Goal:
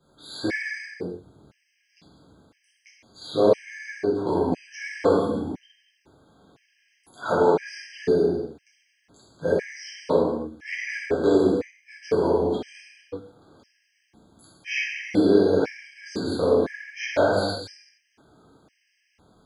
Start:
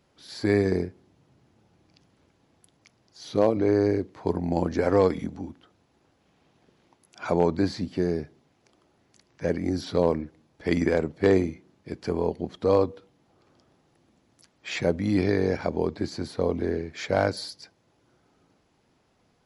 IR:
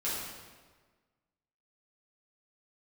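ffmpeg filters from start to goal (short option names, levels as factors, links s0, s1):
-filter_complex "[0:a]bandreject=f=50:t=h:w=6,bandreject=f=100:t=h:w=6,acrossover=split=280|4100[s0][s1][s2];[s0]acompressor=threshold=0.01:ratio=4[s3];[s1]acompressor=threshold=0.0708:ratio=4[s4];[s2]acompressor=threshold=0.00447:ratio=4[s5];[s3][s4][s5]amix=inputs=3:normalize=0[s6];[1:a]atrim=start_sample=2205,afade=t=out:st=0.39:d=0.01,atrim=end_sample=17640[s7];[s6][s7]afir=irnorm=-1:irlink=0,afftfilt=real='re*gt(sin(2*PI*0.99*pts/sr)*(1-2*mod(floor(b*sr/1024/1600),2)),0)':imag='im*gt(sin(2*PI*0.99*pts/sr)*(1-2*mod(floor(b*sr/1024/1600),2)),0)':win_size=1024:overlap=0.75,volume=1.41"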